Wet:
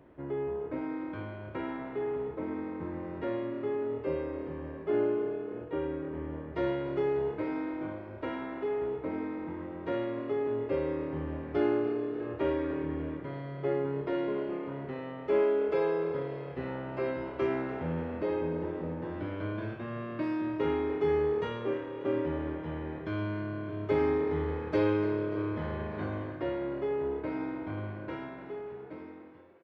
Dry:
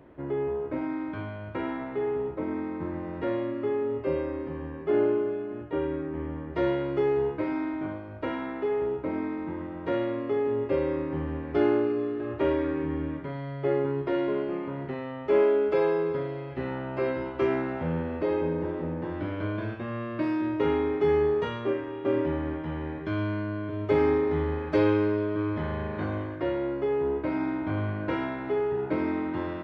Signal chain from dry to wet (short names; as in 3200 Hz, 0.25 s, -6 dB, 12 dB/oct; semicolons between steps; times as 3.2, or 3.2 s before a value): ending faded out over 2.83 s; frequency-shifting echo 0.293 s, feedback 62%, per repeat +37 Hz, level -16 dB; gain -4.5 dB